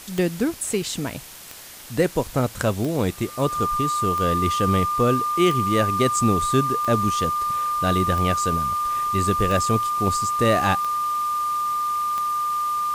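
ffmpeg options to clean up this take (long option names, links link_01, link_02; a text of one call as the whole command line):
ffmpeg -i in.wav -af "adeclick=threshold=4,bandreject=frequency=1200:width=30,afwtdn=0.01" out.wav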